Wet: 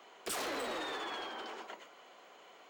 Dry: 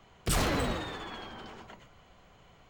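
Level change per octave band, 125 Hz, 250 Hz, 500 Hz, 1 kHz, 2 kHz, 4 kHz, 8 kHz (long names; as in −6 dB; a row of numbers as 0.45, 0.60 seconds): −29.0, −11.0, −4.5, −3.5, −4.0, −3.5, −6.5 decibels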